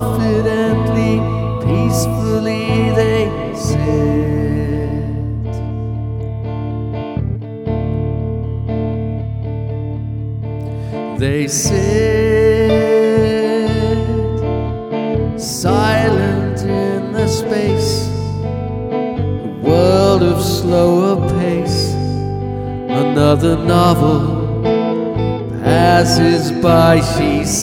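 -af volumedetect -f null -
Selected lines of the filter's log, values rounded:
mean_volume: -14.9 dB
max_volume: -1.4 dB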